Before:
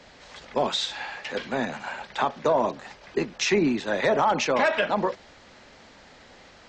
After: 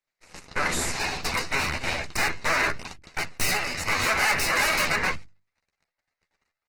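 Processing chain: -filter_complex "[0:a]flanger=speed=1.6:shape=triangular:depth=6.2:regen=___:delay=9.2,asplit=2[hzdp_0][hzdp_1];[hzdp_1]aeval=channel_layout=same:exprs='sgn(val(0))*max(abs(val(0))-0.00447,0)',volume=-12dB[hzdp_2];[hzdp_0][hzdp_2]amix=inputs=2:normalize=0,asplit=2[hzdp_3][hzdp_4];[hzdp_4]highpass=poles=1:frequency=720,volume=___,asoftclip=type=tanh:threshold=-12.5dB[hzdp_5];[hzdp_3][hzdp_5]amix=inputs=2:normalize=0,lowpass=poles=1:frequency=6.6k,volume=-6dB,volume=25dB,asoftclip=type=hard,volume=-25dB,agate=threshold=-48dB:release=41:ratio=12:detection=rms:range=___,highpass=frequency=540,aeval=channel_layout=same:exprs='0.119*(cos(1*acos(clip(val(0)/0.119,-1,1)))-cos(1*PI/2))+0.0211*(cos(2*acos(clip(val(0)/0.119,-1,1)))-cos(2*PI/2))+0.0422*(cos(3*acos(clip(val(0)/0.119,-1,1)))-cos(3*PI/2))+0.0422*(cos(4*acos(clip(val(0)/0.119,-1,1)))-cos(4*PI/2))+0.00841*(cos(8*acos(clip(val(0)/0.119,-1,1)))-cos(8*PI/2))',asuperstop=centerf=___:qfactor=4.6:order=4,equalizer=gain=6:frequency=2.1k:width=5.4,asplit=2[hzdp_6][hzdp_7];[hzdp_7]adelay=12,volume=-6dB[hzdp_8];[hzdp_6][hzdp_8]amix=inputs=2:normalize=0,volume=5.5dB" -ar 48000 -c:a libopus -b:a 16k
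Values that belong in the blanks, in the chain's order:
-86, 12dB, -24dB, 3300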